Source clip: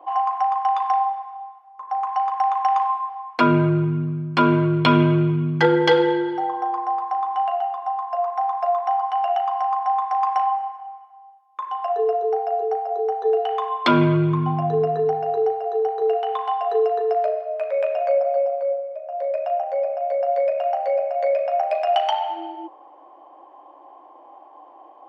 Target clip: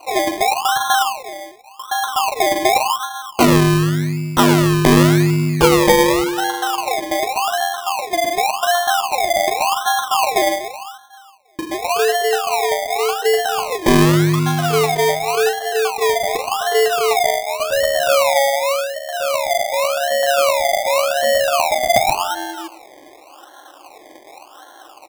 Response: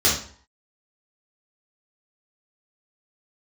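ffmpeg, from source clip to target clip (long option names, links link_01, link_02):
-filter_complex "[0:a]lowpass=frequency=2300:poles=1,asplit=2[link_01][link_02];[link_02]adelay=110,highpass=300,lowpass=3400,asoftclip=type=hard:threshold=-15dB,volume=-12dB[link_03];[link_01][link_03]amix=inputs=2:normalize=0,acrusher=samples=25:mix=1:aa=0.000001:lfo=1:lforange=15:lforate=0.88,volume=4.5dB"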